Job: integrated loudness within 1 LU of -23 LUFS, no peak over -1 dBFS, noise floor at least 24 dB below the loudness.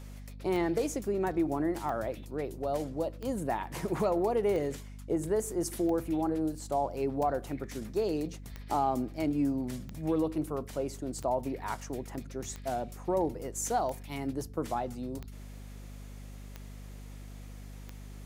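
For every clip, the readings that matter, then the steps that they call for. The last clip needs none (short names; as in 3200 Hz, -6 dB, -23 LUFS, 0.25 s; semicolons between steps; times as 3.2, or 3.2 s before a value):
clicks 14; hum 50 Hz; harmonics up to 250 Hz; hum level -43 dBFS; loudness -33.0 LUFS; peak -19.0 dBFS; loudness target -23.0 LUFS
-> de-click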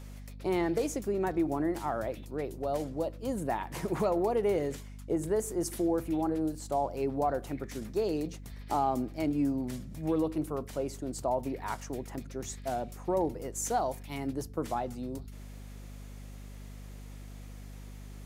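clicks 0; hum 50 Hz; harmonics up to 250 Hz; hum level -43 dBFS
-> notches 50/100/150/200/250 Hz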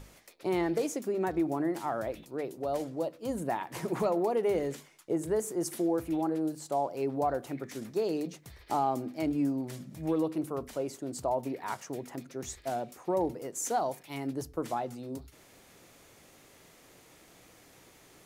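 hum none; loudness -33.0 LUFS; peak -19.0 dBFS; loudness target -23.0 LUFS
-> gain +10 dB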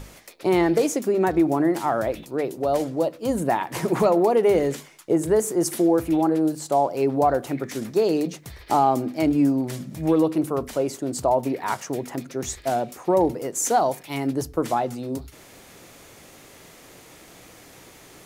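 loudness -23.0 LUFS; peak -9.0 dBFS; noise floor -48 dBFS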